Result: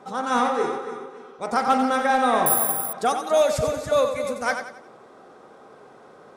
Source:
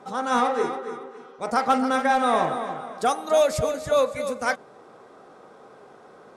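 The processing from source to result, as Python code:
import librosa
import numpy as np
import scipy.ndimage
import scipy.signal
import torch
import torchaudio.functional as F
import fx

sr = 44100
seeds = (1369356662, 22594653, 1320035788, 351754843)

y = fx.echo_feedback(x, sr, ms=90, feedback_pct=39, wet_db=-8)
y = fx.resample_bad(y, sr, factor=4, down='none', up='zero_stuff', at=(2.46, 2.93))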